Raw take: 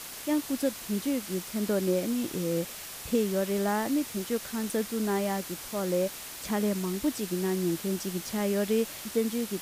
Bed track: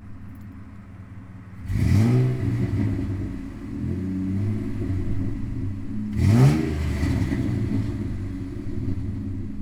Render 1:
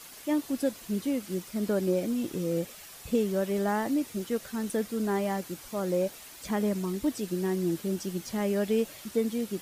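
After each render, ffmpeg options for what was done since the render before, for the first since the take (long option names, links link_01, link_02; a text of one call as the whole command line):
ffmpeg -i in.wav -af "afftdn=noise_reduction=8:noise_floor=-42" out.wav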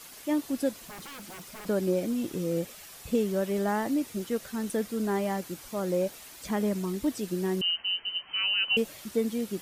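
ffmpeg -i in.wav -filter_complex "[0:a]asplit=3[link_01][link_02][link_03];[link_01]afade=type=out:start_time=0.81:duration=0.02[link_04];[link_02]aeval=exprs='0.0126*(abs(mod(val(0)/0.0126+3,4)-2)-1)':channel_layout=same,afade=type=in:start_time=0.81:duration=0.02,afade=type=out:start_time=1.65:duration=0.02[link_05];[link_03]afade=type=in:start_time=1.65:duration=0.02[link_06];[link_04][link_05][link_06]amix=inputs=3:normalize=0,asettb=1/sr,asplit=3[link_07][link_08][link_09];[link_07]atrim=end=7.614[link_10];[link_08]atrim=start=7.61:end=8.77,asetpts=PTS-STARTPTS,afade=type=in:duration=0.004:curve=qsin,afade=type=out:start_time=1.156:duration=0.004:curve=qsin,lowpass=frequency=2700:width_type=q:width=0.5098,lowpass=frequency=2700:width_type=q:width=0.6013,lowpass=frequency=2700:width_type=q:width=0.9,lowpass=frequency=2700:width_type=q:width=2.563,afreqshift=-3200[link_11];[link_09]atrim=start=8.766[link_12];[link_10][link_11]acrossfade=duration=0.004:curve1=hsin:curve2=qsin[link_13];[link_13][link_12]acrossfade=duration=0.004:curve1=qsin:curve2=hsin" out.wav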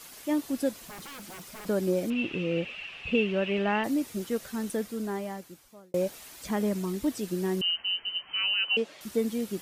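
ffmpeg -i in.wav -filter_complex "[0:a]asettb=1/sr,asplit=3[link_01][link_02][link_03];[link_01]atrim=end=2.104[link_04];[link_02]atrim=start=2.1:end=3.84,asetpts=PTS-STARTPTS,afade=type=in:duration=0.004:curve=qsin,afade=type=out:start_time=1.736:duration=0.004:curve=qsin,lowpass=frequency=2700:width_type=q:width=11[link_05];[link_03]atrim=start=3.836[link_06];[link_04][link_05]acrossfade=duration=0.004:curve1=hsin:curve2=qsin[link_07];[link_07][link_06]acrossfade=duration=0.004:curve1=qsin:curve2=hsin,asettb=1/sr,asplit=3[link_08][link_09][link_10];[link_08]atrim=end=8.544[link_11];[link_09]atrim=start=8.54:end=9.01,asetpts=PTS-STARTPTS,afade=type=in:duration=0.004:curve=qsin,afade=type=out:start_time=0.466:duration=0.004:curve=qsin,highpass=270,lowpass=4500[link_12];[link_10]atrim=start=9.006[link_13];[link_11][link_12]acrossfade=duration=0.004:curve1=hsin:curve2=qsin[link_14];[link_14][link_13]acrossfade=duration=0.004:curve1=qsin:curve2=hsin,asplit=2[link_15][link_16];[link_15]atrim=end=5.94,asetpts=PTS-STARTPTS,afade=type=out:start_time=4.57:duration=1.37[link_17];[link_16]atrim=start=5.94,asetpts=PTS-STARTPTS,afade=type=in:duration=0.004:curve=hsin[link_18];[link_17][link_18]concat=n=2:v=0:a=1" out.wav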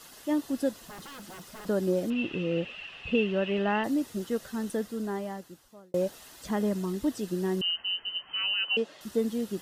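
ffmpeg -i in.wav -af "highshelf=frequency=6500:gain=-5.5,bandreject=frequency=2300:width=5.8" out.wav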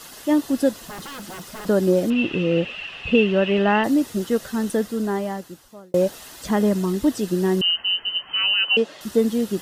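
ffmpeg -i in.wav -af "volume=9dB" out.wav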